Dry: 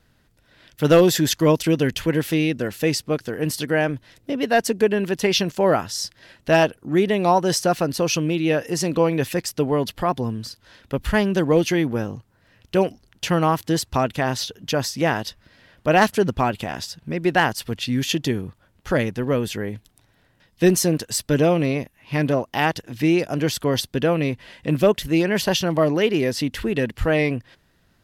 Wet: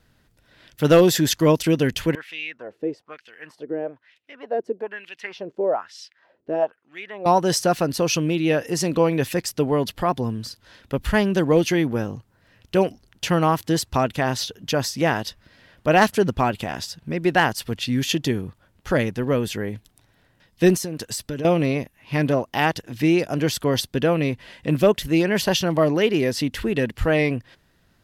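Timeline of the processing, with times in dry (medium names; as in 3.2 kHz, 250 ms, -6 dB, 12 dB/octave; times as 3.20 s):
2.15–7.26 s: wah-wah 1.1 Hz 370–2800 Hz, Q 3.2
20.75–21.45 s: compression 12:1, threshold -24 dBFS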